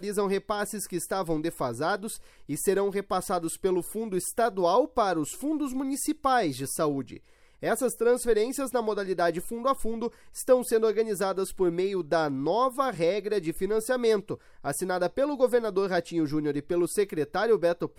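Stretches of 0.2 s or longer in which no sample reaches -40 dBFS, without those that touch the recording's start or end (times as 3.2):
2.2–2.49
7.17–7.62
10.08–10.35
14.35–14.64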